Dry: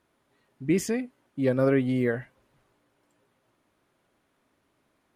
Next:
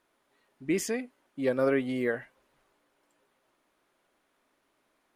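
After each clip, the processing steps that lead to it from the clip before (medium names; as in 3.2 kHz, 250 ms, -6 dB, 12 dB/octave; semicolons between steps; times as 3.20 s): peaking EQ 100 Hz -14 dB 2.2 oct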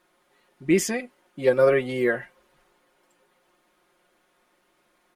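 comb 5.6 ms, depth 72%; trim +5 dB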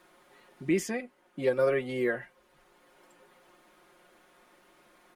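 three bands compressed up and down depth 40%; trim -6 dB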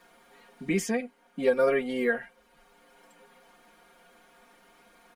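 comb 4.3 ms, depth 97%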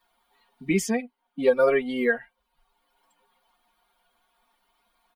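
expander on every frequency bin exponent 1.5; trim +5 dB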